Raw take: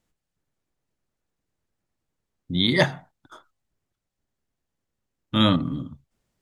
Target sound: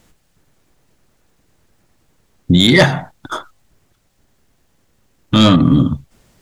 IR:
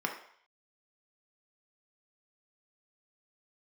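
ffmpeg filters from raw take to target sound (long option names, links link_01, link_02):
-af "asoftclip=type=tanh:threshold=-13.5dB,acompressor=threshold=-28dB:ratio=6,alimiter=level_in=23.5dB:limit=-1dB:release=50:level=0:latency=1,volume=-1dB"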